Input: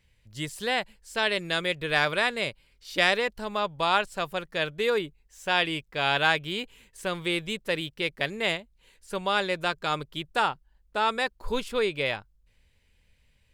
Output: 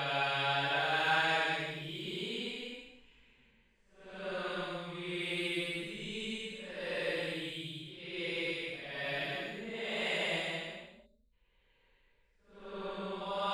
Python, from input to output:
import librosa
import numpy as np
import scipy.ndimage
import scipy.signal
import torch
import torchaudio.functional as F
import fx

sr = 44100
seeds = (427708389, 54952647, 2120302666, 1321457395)

y = fx.env_lowpass(x, sr, base_hz=1500.0, full_db=-24.0)
y = fx.paulstretch(y, sr, seeds[0], factor=4.1, window_s=0.25, from_s=5.99)
y = fx.spec_box(y, sr, start_s=11.06, length_s=0.27, low_hz=640.0, high_hz=3500.0, gain_db=-19)
y = y * 10.0 ** (-8.0 / 20.0)